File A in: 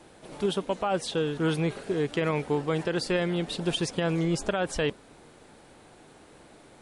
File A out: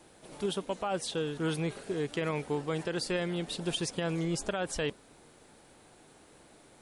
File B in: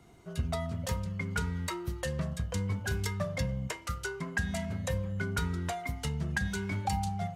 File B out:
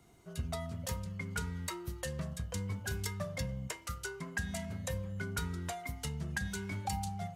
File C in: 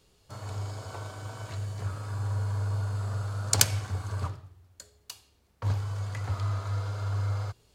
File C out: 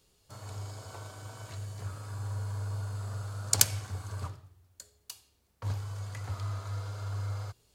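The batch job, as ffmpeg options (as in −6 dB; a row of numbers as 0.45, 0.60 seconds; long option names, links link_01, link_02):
-af "highshelf=frequency=5900:gain=8,volume=-5.5dB"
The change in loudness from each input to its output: −5.0, −5.0, −3.5 LU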